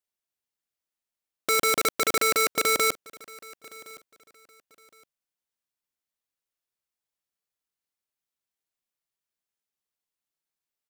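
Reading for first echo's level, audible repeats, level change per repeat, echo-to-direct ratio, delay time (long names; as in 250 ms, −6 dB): −22.0 dB, 2, −12.5 dB, −22.0 dB, 1,065 ms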